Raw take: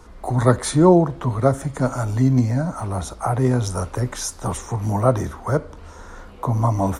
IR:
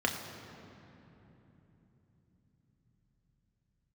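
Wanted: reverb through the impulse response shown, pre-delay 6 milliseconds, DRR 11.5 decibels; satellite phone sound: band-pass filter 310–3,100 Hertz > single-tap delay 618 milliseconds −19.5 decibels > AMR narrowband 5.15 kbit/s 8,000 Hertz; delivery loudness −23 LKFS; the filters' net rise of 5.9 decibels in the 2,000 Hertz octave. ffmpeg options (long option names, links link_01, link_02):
-filter_complex "[0:a]equalizer=frequency=2000:width_type=o:gain=8.5,asplit=2[link_01][link_02];[1:a]atrim=start_sample=2205,adelay=6[link_03];[link_02][link_03]afir=irnorm=-1:irlink=0,volume=-20.5dB[link_04];[link_01][link_04]amix=inputs=2:normalize=0,highpass=310,lowpass=3100,aecho=1:1:618:0.106,volume=2dB" -ar 8000 -c:a libopencore_amrnb -b:a 5150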